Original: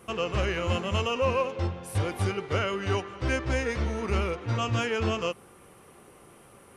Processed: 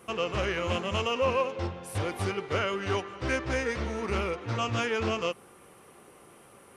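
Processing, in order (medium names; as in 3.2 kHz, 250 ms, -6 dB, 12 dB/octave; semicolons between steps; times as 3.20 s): bass shelf 130 Hz -8 dB; loudspeaker Doppler distortion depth 0.14 ms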